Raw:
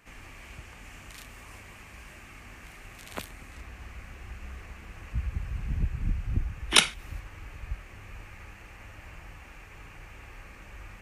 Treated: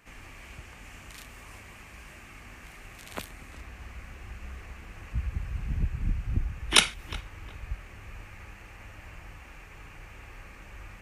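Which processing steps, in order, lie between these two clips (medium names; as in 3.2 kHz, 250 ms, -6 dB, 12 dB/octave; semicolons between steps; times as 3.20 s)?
filtered feedback delay 361 ms, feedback 32%, low-pass 2.2 kHz, level -17 dB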